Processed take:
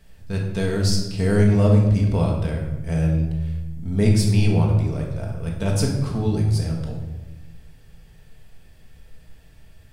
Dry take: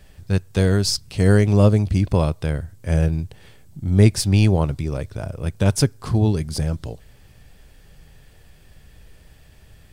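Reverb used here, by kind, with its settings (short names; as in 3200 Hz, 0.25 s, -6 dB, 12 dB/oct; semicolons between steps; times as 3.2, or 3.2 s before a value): shoebox room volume 560 m³, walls mixed, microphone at 1.6 m; gain -6.5 dB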